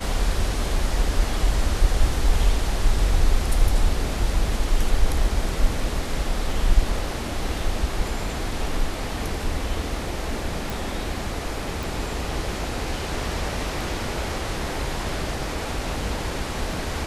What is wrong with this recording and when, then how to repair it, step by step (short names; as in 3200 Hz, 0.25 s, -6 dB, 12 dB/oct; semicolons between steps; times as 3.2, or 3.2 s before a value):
10.7 pop
11.83 pop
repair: de-click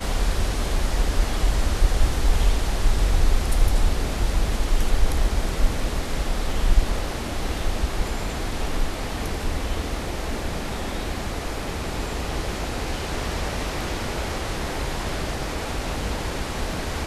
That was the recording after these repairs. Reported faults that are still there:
none